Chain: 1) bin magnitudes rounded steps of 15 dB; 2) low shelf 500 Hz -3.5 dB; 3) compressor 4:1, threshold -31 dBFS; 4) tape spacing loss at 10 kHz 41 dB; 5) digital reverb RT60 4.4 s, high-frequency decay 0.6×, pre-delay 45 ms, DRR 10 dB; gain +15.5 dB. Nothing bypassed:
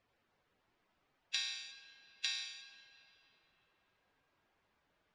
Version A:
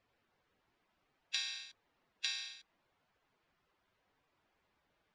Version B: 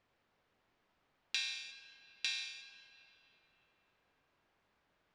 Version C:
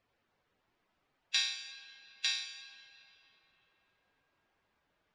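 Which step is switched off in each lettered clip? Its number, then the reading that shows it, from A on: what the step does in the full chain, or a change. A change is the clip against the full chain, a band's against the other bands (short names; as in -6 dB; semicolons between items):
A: 5, momentary loudness spread change -5 LU; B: 1, 2 kHz band +3.0 dB; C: 3, mean gain reduction 2.5 dB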